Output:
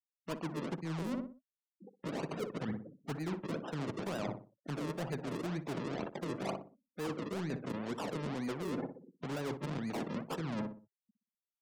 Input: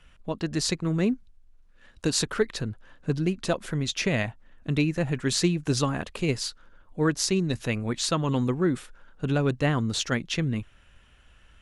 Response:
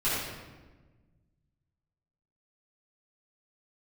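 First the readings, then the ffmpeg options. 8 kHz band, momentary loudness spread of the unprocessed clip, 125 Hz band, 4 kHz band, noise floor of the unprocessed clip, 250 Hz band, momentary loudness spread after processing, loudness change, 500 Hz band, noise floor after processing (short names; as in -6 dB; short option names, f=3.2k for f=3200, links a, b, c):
-23.0 dB, 9 LU, -14.0 dB, -18.5 dB, -57 dBFS, -11.0 dB, 6 LU, -12.5 dB, -10.5 dB, under -85 dBFS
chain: -filter_complex "[0:a]acrossover=split=450[a][b];[b]dynaudnorm=f=400:g=7:m=5.5dB[c];[a][c]amix=inputs=2:normalize=0,alimiter=limit=-16dB:level=0:latency=1:release=128,acrusher=samples=40:mix=1:aa=0.000001:lfo=1:lforange=40:lforate=2.1,highpass=f=150:w=0.5412,highpass=f=150:w=1.3066,afftfilt=real='re*gte(hypot(re,im),0.01)':imag='im*gte(hypot(re,im),0.01)':win_size=1024:overlap=0.75,asoftclip=type=tanh:threshold=-22dB,asplit=2[d][e];[e]adelay=61,lowpass=f=970:p=1,volume=-10dB,asplit=2[f][g];[g]adelay=61,lowpass=f=970:p=1,volume=0.38,asplit=2[h][i];[i]adelay=61,lowpass=f=970:p=1,volume=0.38,asplit=2[j][k];[k]adelay=61,lowpass=f=970:p=1,volume=0.38[l];[d][f][h][j][l]amix=inputs=5:normalize=0,areverse,acompressor=threshold=-40dB:ratio=16,areverse,volume=5.5dB"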